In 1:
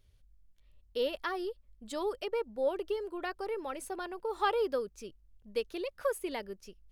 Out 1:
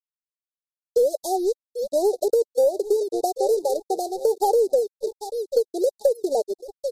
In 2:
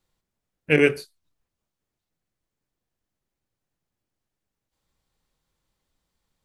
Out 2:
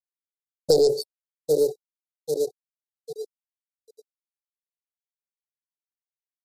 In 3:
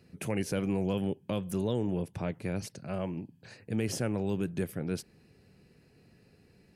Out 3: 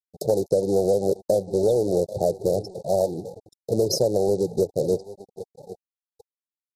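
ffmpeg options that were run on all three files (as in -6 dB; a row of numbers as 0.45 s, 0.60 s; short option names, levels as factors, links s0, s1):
-filter_complex "[0:a]equalizer=f=125:t=o:w=1:g=4,equalizer=f=250:t=o:w=1:g=-9,equalizer=f=500:t=o:w=1:g=7,equalizer=f=2000:t=o:w=1:g=4,equalizer=f=8000:t=o:w=1:g=-4,aecho=1:1:788|1576|2364|3152:0.178|0.0782|0.0344|0.0151,afftfilt=real='re*gte(hypot(re,im),0.0251)':imag='im*gte(hypot(re,im),0.0251)':win_size=1024:overlap=0.75,aeval=exprs='(tanh(2.51*val(0)+0.55)-tanh(0.55))/2.51':c=same,acrossover=split=800[s0][s1];[s0]acontrast=46[s2];[s2][s1]amix=inputs=2:normalize=0,aeval=exprs='sgn(val(0))*max(abs(val(0))-0.00422,0)':c=same,crystalizer=i=1.5:c=0,asplit=2[s3][s4];[s4]aeval=exprs='0.794*sin(PI/2*2.51*val(0)/0.794)':c=same,volume=0.501[s5];[s3][s5]amix=inputs=2:normalize=0,asuperstop=centerf=1800:order=20:qfactor=0.59,bass=f=250:g=-14,treble=f=4000:g=6,acompressor=threshold=0.0891:ratio=6,volume=1.78" -ar 44100 -c:a libmp3lame -b:a 56k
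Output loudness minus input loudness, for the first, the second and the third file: +12.0 LU, -3.0 LU, +10.0 LU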